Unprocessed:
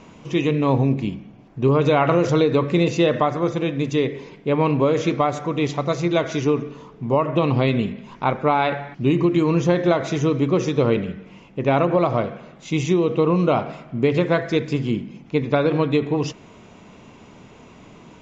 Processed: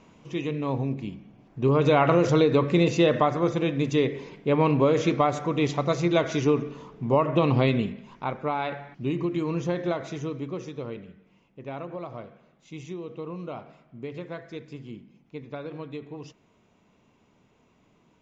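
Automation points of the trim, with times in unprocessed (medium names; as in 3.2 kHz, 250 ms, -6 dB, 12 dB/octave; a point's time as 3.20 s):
1.06 s -9.5 dB
1.92 s -2.5 dB
7.64 s -2.5 dB
8.28 s -9.5 dB
9.90 s -9.5 dB
10.99 s -18 dB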